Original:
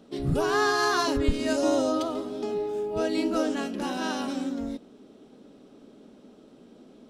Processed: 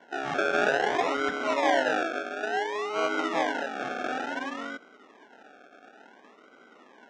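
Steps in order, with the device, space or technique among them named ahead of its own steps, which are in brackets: circuit-bent sampling toy (decimation with a swept rate 35×, swing 60% 0.57 Hz; speaker cabinet 420–5600 Hz, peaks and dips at 750 Hz +6 dB, 1500 Hz +9 dB, 4500 Hz -10 dB)

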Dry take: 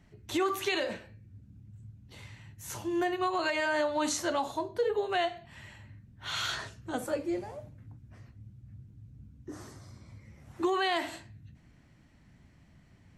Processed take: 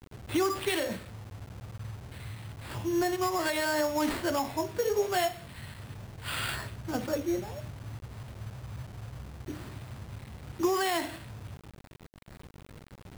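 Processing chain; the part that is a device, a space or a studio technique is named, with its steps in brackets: gate with hold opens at -56 dBFS; tone controls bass +10 dB, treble -2 dB; notches 50/100/150/200/250 Hz; early 8-bit sampler (sample-rate reducer 6100 Hz, jitter 0%; bit-crush 8-bit); 4.42–6.36 doubler 22 ms -7.5 dB

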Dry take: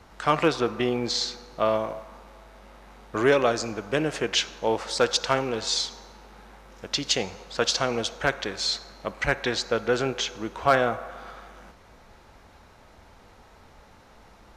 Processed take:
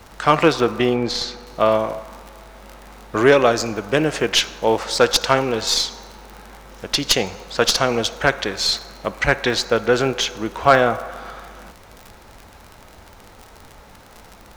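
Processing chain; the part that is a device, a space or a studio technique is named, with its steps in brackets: record under a worn stylus (tracing distortion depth 0.03 ms; crackle 47/s -35 dBFS; pink noise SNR 34 dB); 0.94–1.47 high shelf 4700 Hz -10 dB; gain +7 dB

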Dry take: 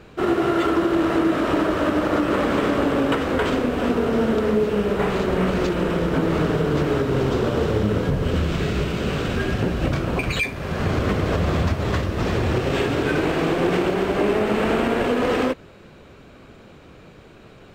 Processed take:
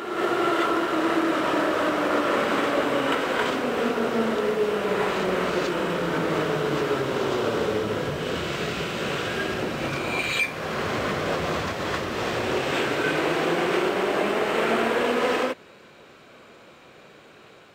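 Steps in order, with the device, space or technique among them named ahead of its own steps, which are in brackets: ghost voice (reverse; reverb RT60 1.6 s, pre-delay 15 ms, DRR 1 dB; reverse; HPF 580 Hz 6 dB/oct); gain -1 dB

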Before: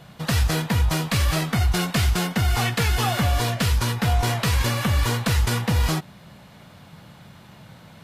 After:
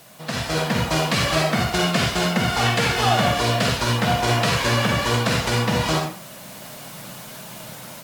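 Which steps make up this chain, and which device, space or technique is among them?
filmed off a television (BPF 190–7900 Hz; bell 620 Hz +5.5 dB 0.37 oct; reverb RT60 0.45 s, pre-delay 43 ms, DRR 0.5 dB; white noise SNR 21 dB; AGC gain up to 10 dB; gain -4.5 dB; AAC 96 kbps 44100 Hz)

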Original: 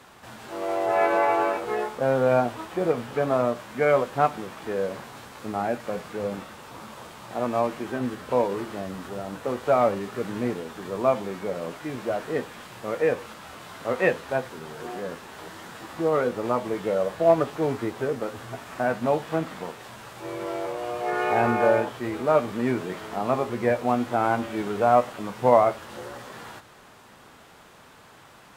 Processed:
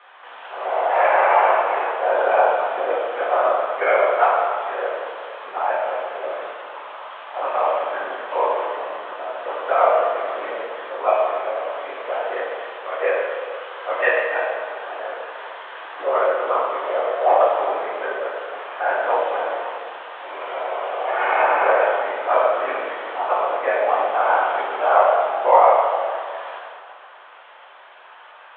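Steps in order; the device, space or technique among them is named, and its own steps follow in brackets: whispering ghost (whisperiser; HPF 570 Hz 24 dB/oct; reverb RT60 2.1 s, pre-delay 4 ms, DRR -5 dB); elliptic low-pass 3300 Hz, stop band 40 dB; gain +2 dB

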